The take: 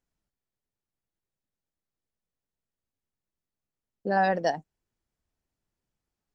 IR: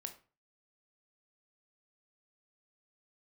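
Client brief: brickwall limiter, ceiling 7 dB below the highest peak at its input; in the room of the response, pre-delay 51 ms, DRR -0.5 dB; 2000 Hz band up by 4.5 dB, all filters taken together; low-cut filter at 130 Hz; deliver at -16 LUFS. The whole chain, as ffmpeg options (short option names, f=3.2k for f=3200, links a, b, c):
-filter_complex "[0:a]highpass=130,equalizer=f=2k:t=o:g=5.5,alimiter=limit=-18dB:level=0:latency=1,asplit=2[a][b];[1:a]atrim=start_sample=2205,adelay=51[c];[b][c]afir=irnorm=-1:irlink=0,volume=4dB[d];[a][d]amix=inputs=2:normalize=0,volume=11.5dB"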